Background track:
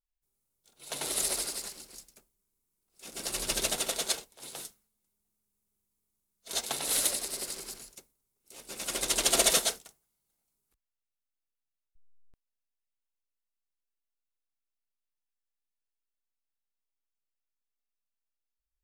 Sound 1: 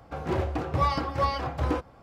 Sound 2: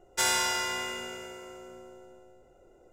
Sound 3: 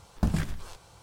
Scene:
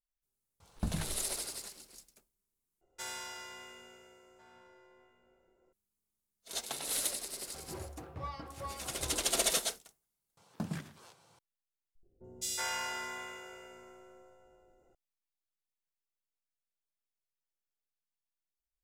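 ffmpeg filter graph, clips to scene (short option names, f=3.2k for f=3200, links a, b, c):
-filter_complex "[3:a]asplit=2[a][b];[2:a]asplit=2[c][d];[0:a]volume=-6dB[e];[c]asplit=2[f][g];[g]adelay=1399,volume=-12dB,highshelf=f=4k:g=-31.5[h];[f][h]amix=inputs=2:normalize=0[i];[b]highpass=f=130:w=0.5412,highpass=f=130:w=1.3066[j];[d]acrossover=split=380|3300[k][l][m];[m]adelay=210[n];[l]adelay=370[o];[k][o][n]amix=inputs=3:normalize=0[p];[e]asplit=4[q][r][s][t];[q]atrim=end=2.814[u];[i]atrim=end=2.92,asetpts=PTS-STARTPTS,volume=-16dB[v];[r]atrim=start=5.726:end=10.374[w];[j]atrim=end=1.02,asetpts=PTS-STARTPTS,volume=-9dB[x];[s]atrim=start=11.386:end=12.034[y];[p]atrim=end=2.92,asetpts=PTS-STARTPTS,volume=-7.5dB[z];[t]atrim=start=14.946[aa];[a]atrim=end=1.02,asetpts=PTS-STARTPTS,volume=-9dB,afade=t=in:d=0.004:c=hsin,afade=t=out:st=1.016:d=0.004:c=hsin,adelay=600[ab];[1:a]atrim=end=2.02,asetpts=PTS-STARTPTS,volume=-17dB,afade=t=in:d=0.004:c=hsin,afade=t=out:st=2.016:d=0.004:c=hsin,adelay=7420[ac];[u][v]acrossfade=d=0.004:c1=hsin:c2=hsin[ad];[ad][w]acrossfade=d=0.004:c1=hsin:c2=hsin[ae];[ae][x]acrossfade=d=0.004:c1=hsin:c2=hsin[af];[af][y]acrossfade=d=0.004:c1=hsin:c2=hsin[ag];[ag][z]acrossfade=d=0.004:c1=hsin:c2=hsin[ah];[ah][aa]acrossfade=d=0.004:c1=hsin:c2=hsin[ai];[ai][ab][ac]amix=inputs=3:normalize=0"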